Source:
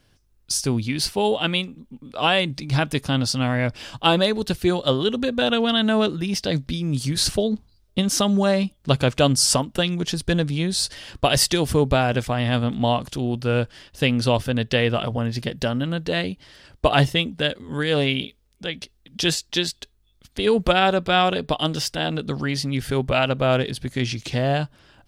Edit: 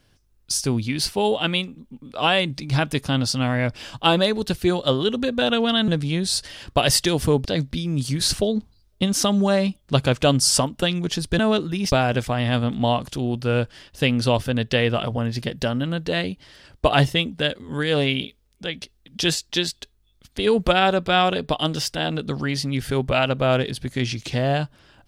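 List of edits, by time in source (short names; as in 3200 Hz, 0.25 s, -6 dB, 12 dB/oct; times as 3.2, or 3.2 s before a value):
5.88–6.41 swap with 10.35–11.92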